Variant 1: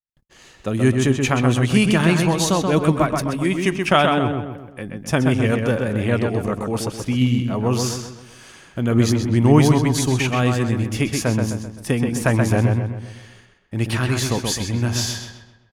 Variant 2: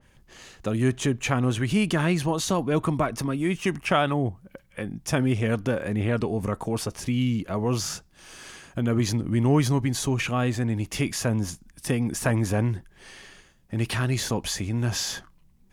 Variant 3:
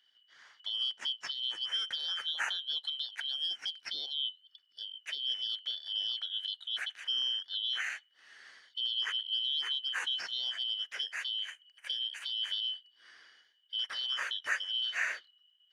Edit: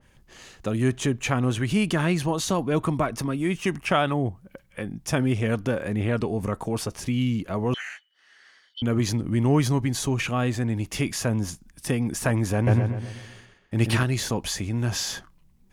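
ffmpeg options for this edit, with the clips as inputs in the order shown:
ffmpeg -i take0.wav -i take1.wav -i take2.wav -filter_complex "[1:a]asplit=3[link_01][link_02][link_03];[link_01]atrim=end=7.742[link_04];[2:a]atrim=start=7.738:end=8.822[link_05];[link_02]atrim=start=8.818:end=12.672[link_06];[0:a]atrim=start=12.668:end=14.032[link_07];[link_03]atrim=start=14.028[link_08];[link_04][link_05]acrossfade=duration=0.004:curve1=hsin:curve2=hsin[link_09];[link_09][link_06]acrossfade=duration=0.004:curve1=hsin:curve2=hsin[link_10];[link_10][link_07]acrossfade=duration=0.004:curve1=hsin:curve2=hsin[link_11];[link_11][link_08]acrossfade=duration=0.004:curve1=hsin:curve2=hsin" out.wav

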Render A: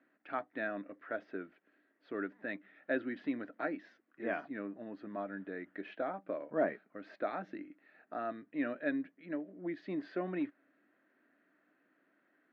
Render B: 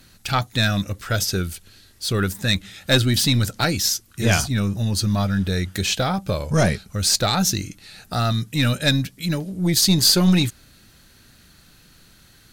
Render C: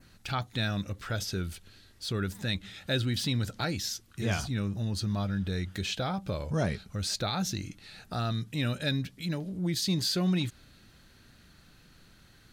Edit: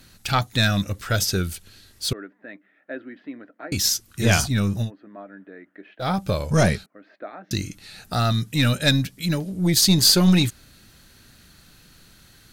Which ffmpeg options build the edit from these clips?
ffmpeg -i take0.wav -i take1.wav -filter_complex "[0:a]asplit=3[link_01][link_02][link_03];[1:a]asplit=4[link_04][link_05][link_06][link_07];[link_04]atrim=end=2.132[link_08];[link_01]atrim=start=2.128:end=3.722[link_09];[link_05]atrim=start=3.718:end=4.91[link_10];[link_02]atrim=start=4.81:end=6.09[link_11];[link_06]atrim=start=5.99:end=6.862[link_12];[link_03]atrim=start=6.858:end=7.512[link_13];[link_07]atrim=start=7.508[link_14];[link_08][link_09]acrossfade=duration=0.004:curve1=hsin:curve2=hsin[link_15];[link_15][link_10]acrossfade=duration=0.004:curve1=hsin:curve2=hsin[link_16];[link_16][link_11]acrossfade=duration=0.1:curve1=tri:curve2=tri[link_17];[link_17][link_12]acrossfade=duration=0.1:curve1=tri:curve2=tri[link_18];[link_18][link_13]acrossfade=duration=0.004:curve1=hsin:curve2=hsin[link_19];[link_19][link_14]acrossfade=duration=0.004:curve1=hsin:curve2=hsin" out.wav

